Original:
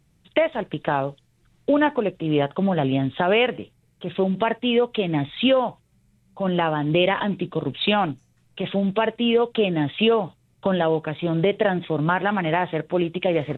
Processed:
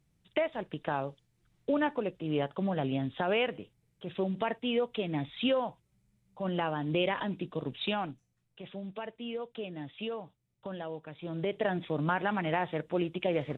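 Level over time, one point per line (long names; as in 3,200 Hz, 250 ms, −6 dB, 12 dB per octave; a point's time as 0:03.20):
0:07.71 −10 dB
0:08.63 −18.5 dB
0:11.03 −18.5 dB
0:11.76 −8.5 dB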